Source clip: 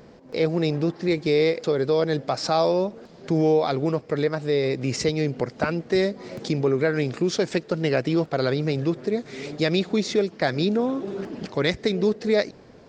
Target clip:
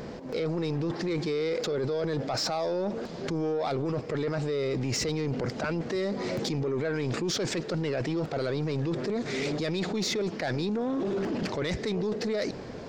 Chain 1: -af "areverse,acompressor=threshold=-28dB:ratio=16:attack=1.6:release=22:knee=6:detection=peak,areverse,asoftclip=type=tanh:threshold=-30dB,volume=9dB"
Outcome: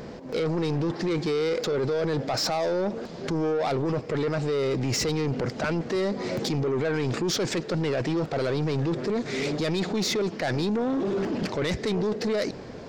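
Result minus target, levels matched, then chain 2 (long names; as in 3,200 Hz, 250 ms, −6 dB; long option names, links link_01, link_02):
downward compressor: peak gain reduction −5.5 dB
-af "areverse,acompressor=threshold=-34dB:ratio=16:attack=1.6:release=22:knee=6:detection=peak,areverse,asoftclip=type=tanh:threshold=-30dB,volume=9dB"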